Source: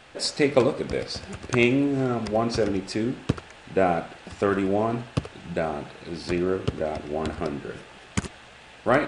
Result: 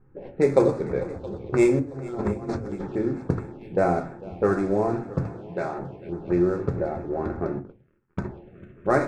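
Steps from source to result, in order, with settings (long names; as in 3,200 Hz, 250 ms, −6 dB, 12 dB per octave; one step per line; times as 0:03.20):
running median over 9 samples
low-pass that shuts in the quiet parts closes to 380 Hz, open at −18 dBFS
0:01.79–0:02.87: compressor whose output falls as the input rises −31 dBFS, ratio −0.5
0:05.25–0:05.79: spectral tilt +3 dB per octave
echo machine with several playback heads 224 ms, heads second and third, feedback 58%, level −19 dB
0:07.59–0:08.19: power curve on the samples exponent 2
convolution reverb, pre-delay 5 ms, DRR 6 dB
phaser swept by the level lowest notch 590 Hz, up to 3,000 Hz, full sweep at −27 dBFS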